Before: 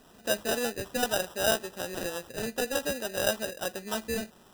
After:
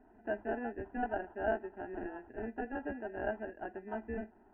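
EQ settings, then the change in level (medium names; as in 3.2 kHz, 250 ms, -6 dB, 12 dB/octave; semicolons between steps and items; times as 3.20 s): Gaussian low-pass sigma 5.2 samples; distance through air 77 m; static phaser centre 780 Hz, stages 8; -1.0 dB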